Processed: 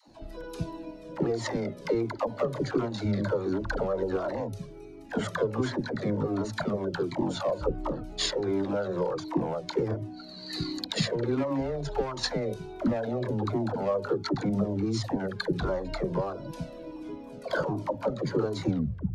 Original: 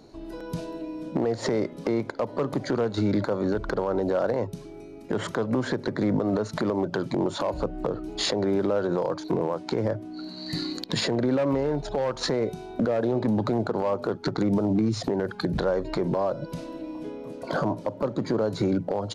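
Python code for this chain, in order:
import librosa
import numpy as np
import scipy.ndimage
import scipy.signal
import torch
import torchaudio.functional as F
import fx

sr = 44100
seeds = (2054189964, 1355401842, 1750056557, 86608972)

y = fx.tape_stop_end(x, sr, length_s=0.46)
y = fx.transient(y, sr, attack_db=7, sustain_db=3)
y = fx.dispersion(y, sr, late='lows', ms=79.0, hz=440.0)
y = fx.comb_cascade(y, sr, direction='falling', hz=1.4)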